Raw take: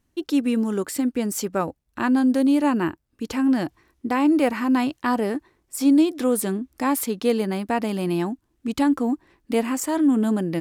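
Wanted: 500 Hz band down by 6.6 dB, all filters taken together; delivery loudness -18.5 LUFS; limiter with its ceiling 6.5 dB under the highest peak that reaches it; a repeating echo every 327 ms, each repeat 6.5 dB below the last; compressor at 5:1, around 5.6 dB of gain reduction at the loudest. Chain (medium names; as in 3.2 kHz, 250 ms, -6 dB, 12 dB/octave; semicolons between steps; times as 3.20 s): peaking EQ 500 Hz -8.5 dB; compression 5:1, threshold -23 dBFS; peak limiter -21 dBFS; feedback delay 327 ms, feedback 47%, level -6.5 dB; trim +10.5 dB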